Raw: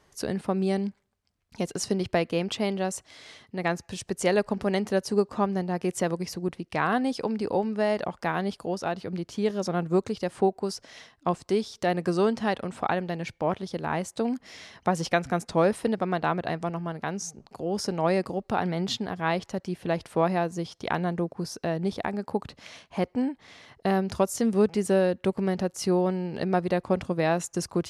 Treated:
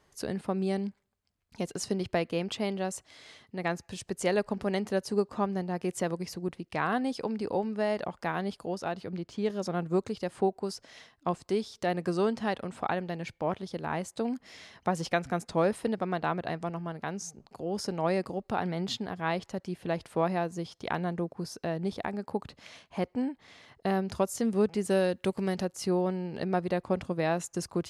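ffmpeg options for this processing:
ffmpeg -i in.wav -filter_complex "[0:a]asettb=1/sr,asplit=3[link_01][link_02][link_03];[link_01]atrim=end=9.094[link_04];[link_02]atrim=start=9.09:end=9.5,asetpts=PTS-STARTPTS,afade=type=in:duration=0.004:curve=qsin,afade=type=out:start_time=0.406:duration=0.004:curve=qsin,adynamicsmooth=sensitivity=5:basefreq=7400[link_05];[link_03]atrim=start=9.496[link_06];[link_04][link_05]acrossfade=duration=0.004:curve1=hsin:curve2=qsin[link_07];[link_07][link_06]acrossfade=duration=0.004:curve1=qsin:curve2=hsin,asettb=1/sr,asplit=3[link_08][link_09][link_10];[link_08]atrim=end=24.904[link_11];[link_09]atrim=start=24.9:end=25.65,asetpts=PTS-STARTPTS,afade=type=in:duration=0.004:curve=qsin,afade=type=out:start_time=0.746:duration=0.004:curve=qsin,highshelf=frequency=2900:gain=9[link_12];[link_10]atrim=start=25.646[link_13];[link_11][link_12]acrossfade=duration=0.004:curve1=hsin:curve2=qsin[link_14];[link_14][link_13]acrossfade=duration=0.004:curve1=qsin:curve2=hsin,bandreject=frequency=5700:width=25,volume=-4dB" out.wav

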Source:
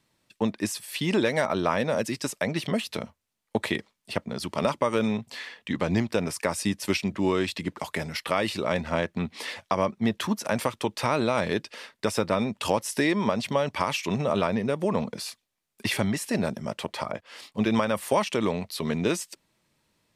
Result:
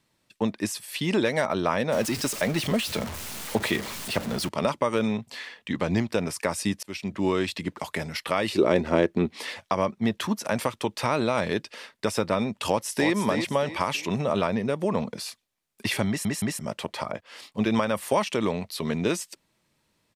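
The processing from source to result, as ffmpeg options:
ffmpeg -i in.wav -filter_complex "[0:a]asettb=1/sr,asplit=3[link_01][link_02][link_03];[link_01]atrim=end=1.924[link_04];[link_02]atrim=start=1.92:end=4.49,asetpts=PTS-STARTPTS,afade=type=in:duration=0.004:curve=qsin,afade=type=out:start_time=2.566:duration=0.004:curve=qsin,aeval=exprs='val(0)+0.5*0.0335*sgn(val(0))':channel_layout=same[link_05];[link_03]atrim=start=4.486[link_06];[link_04][link_05]acrossfade=duration=0.004:curve1=hsin:curve2=qsin[link_07];[link_07][link_06]acrossfade=duration=0.004:curve1=qsin:curve2=hsin,asettb=1/sr,asplit=3[link_08][link_09][link_10];[link_08]atrim=end=8.524[link_11];[link_09]atrim=start=8.52:end=9.31,asetpts=PTS-STARTPTS,afade=type=in:duration=0.004:curve=qsin,afade=type=out:start_time=0.786:duration=0.004:curve=qsin,equalizer=frequency=360:width_type=o:width=0.9:gain=14[link_12];[link_10]atrim=start=9.306[link_13];[link_11][link_12]acrossfade=duration=0.004:curve1=hsin:curve2=qsin[link_14];[link_14][link_13]acrossfade=duration=0.004:curve1=qsin:curve2=hsin,asplit=2[link_15][link_16];[link_16]afade=type=in:start_time=12.67:duration=0.01,afade=type=out:start_time=13.12:duration=0.01,aecho=0:1:320|640|960|1280:0.473151|0.165603|0.057961|0.0202864[link_17];[link_15][link_17]amix=inputs=2:normalize=0,asplit=5[link_18][link_19][link_20][link_21][link_22];[link_18]atrim=end=6.83,asetpts=PTS-STARTPTS,afade=type=out:start_time=6.826:duration=0.004:curve=hsin[link_23];[link_19]atrim=start=6.83:end=16.252,asetpts=PTS-STARTPTS,afade=type=in:duration=0.49:curve=qsin[link_24];[link_20]atrim=start=16.078:end=16.252[link_25];[link_21]atrim=start=16.078:end=16.252[link_26];[link_22]atrim=start=16.588[link_27];[link_23][link_24]concat=n=2:v=0:a=1[link_28];[link_28][link_25]acrossfade=duration=0.004:curve1=hsin:curve2=hsin[link_29];[link_29][link_26]acrossfade=duration=0.004:curve1=hsin:curve2=hsin[link_30];[link_30][link_27]acrossfade=duration=0.004:curve1=hsin:curve2=hsin" out.wav

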